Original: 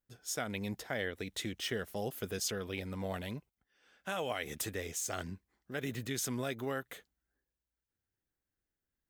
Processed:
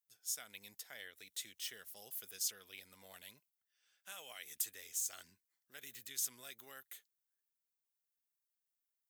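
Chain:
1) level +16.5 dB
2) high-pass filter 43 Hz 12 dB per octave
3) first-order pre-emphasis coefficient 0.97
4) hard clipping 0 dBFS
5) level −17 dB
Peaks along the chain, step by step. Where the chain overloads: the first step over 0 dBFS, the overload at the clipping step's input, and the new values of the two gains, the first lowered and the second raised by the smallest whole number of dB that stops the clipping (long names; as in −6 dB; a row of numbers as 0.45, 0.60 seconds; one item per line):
−5.5, −5.0, −4.5, −4.5, −21.5 dBFS
no step passes full scale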